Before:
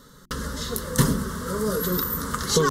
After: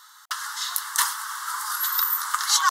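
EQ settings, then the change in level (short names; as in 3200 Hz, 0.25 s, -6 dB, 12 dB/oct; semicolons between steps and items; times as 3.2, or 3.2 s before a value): brick-wall FIR high-pass 720 Hz; +4.5 dB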